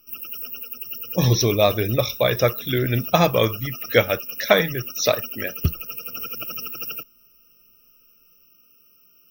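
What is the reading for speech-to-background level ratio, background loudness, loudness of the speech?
9.0 dB, -30.0 LUFS, -21.0 LUFS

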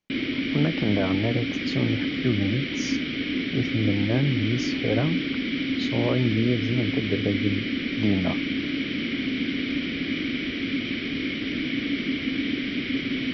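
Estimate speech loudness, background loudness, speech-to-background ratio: -27.5 LUFS, -27.0 LUFS, -0.5 dB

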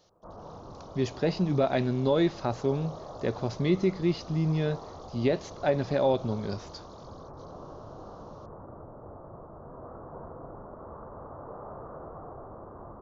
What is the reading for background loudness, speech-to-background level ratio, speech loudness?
-45.0 LUFS, 16.5 dB, -28.5 LUFS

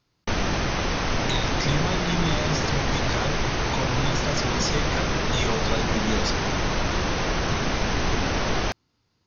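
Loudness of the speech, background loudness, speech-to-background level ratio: -30.0 LUFS, -25.5 LUFS, -4.5 dB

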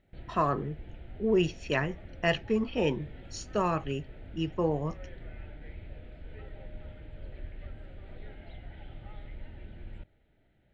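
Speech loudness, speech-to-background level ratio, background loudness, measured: -31.0 LUFS, 17.0 dB, -48.0 LUFS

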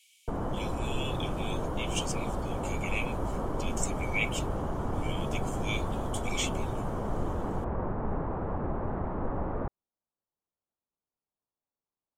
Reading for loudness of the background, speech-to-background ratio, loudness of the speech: -34.5 LUFS, -3.0 dB, -37.5 LUFS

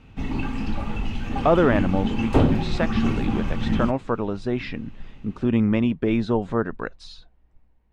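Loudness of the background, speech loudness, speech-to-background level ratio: -26.0 LUFS, -25.0 LUFS, 1.0 dB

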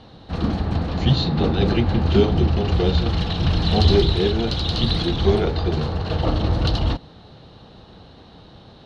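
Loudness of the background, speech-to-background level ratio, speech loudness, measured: -22.5 LUFS, -1.0 dB, -23.5 LUFS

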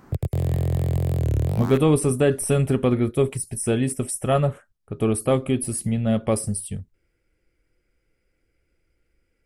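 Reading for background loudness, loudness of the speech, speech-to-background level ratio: -24.5 LUFS, -22.5 LUFS, 2.0 dB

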